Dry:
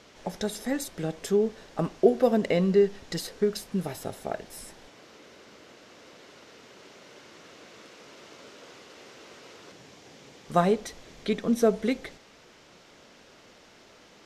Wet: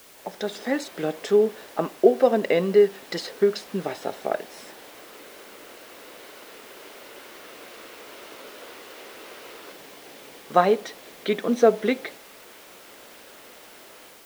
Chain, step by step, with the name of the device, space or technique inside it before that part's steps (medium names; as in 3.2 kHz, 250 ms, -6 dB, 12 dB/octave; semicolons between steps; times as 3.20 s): dictaphone (band-pass 310–4200 Hz; level rider gain up to 7 dB; wow and flutter; white noise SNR 25 dB)